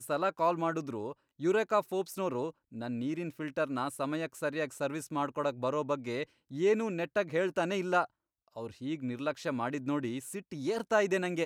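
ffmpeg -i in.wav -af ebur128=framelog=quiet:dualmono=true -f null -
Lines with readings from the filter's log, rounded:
Integrated loudness:
  I:         -30.2 LUFS
  Threshold: -40.4 LUFS
Loudness range:
  LRA:         2.9 LU
  Threshold: -50.8 LUFS
  LRA low:   -32.2 LUFS
  LRA high:  -29.4 LUFS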